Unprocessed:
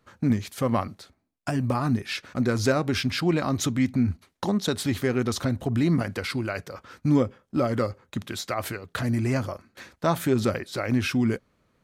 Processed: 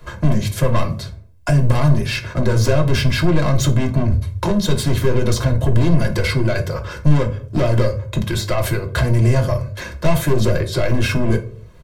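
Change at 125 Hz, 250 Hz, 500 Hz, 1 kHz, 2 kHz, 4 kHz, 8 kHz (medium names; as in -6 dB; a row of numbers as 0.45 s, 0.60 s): +12.0 dB, +3.5 dB, +7.5 dB, +4.5 dB, +7.0 dB, +7.0 dB, +6.5 dB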